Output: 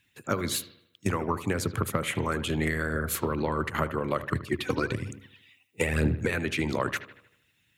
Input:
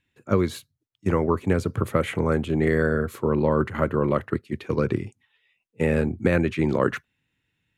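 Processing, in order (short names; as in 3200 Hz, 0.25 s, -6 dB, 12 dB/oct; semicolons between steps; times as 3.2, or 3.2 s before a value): tilt +3 dB/oct; de-hum 68.64 Hz, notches 10; harmonic-percussive split harmonic -15 dB; bell 100 Hz +13.5 dB 1.9 oct; compressor 6:1, threshold -33 dBFS, peak gain reduction 14.5 dB; 4.23–6.31 phaser 1.1 Hz, delay 4.1 ms, feedback 55%; analogue delay 77 ms, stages 2048, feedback 49%, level -14.5 dB; gain +8 dB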